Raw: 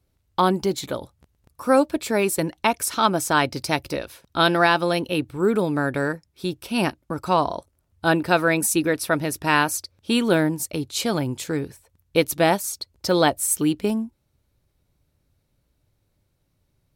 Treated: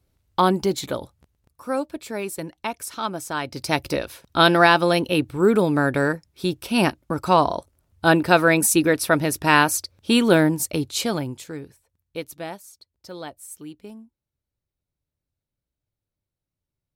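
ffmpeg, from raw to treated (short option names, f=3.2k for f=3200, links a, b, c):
-af "volume=12dB,afade=t=out:st=1.01:d=0.61:silence=0.354813,afade=t=in:st=3.44:d=0.42:silence=0.281838,afade=t=out:st=10.77:d=0.67:silence=0.281838,afade=t=out:st=11.44:d=1.25:silence=0.334965"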